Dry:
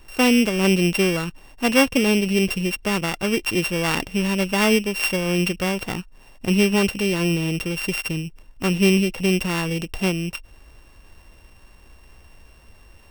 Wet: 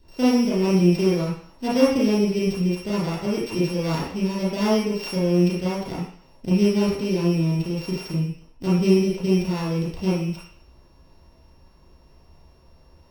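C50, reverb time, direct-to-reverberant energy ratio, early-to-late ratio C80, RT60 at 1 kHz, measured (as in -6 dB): 1.5 dB, 0.55 s, -8.5 dB, 6.0 dB, 0.55 s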